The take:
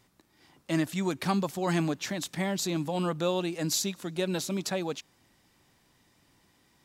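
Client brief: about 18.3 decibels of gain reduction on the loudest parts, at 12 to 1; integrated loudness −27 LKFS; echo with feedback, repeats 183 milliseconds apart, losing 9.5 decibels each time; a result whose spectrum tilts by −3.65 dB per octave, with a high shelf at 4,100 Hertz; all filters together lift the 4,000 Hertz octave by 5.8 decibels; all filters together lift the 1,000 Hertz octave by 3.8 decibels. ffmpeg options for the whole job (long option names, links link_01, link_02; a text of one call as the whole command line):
ffmpeg -i in.wav -af "equalizer=frequency=1000:width_type=o:gain=4.5,equalizer=frequency=4000:width_type=o:gain=4,highshelf=frequency=4100:gain=4.5,acompressor=threshold=-39dB:ratio=12,aecho=1:1:183|366|549|732:0.335|0.111|0.0365|0.012,volume=15dB" out.wav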